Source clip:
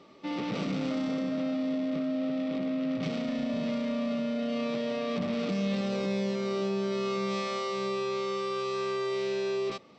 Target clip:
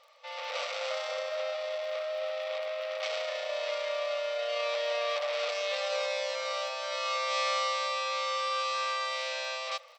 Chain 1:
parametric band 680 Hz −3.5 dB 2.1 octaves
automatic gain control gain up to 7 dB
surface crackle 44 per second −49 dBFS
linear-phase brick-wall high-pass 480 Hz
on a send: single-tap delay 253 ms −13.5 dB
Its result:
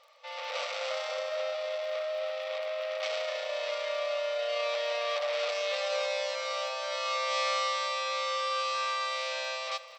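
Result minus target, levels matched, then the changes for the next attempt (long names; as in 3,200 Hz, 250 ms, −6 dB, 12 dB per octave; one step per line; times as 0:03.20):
echo-to-direct +12 dB
change: single-tap delay 253 ms −25.5 dB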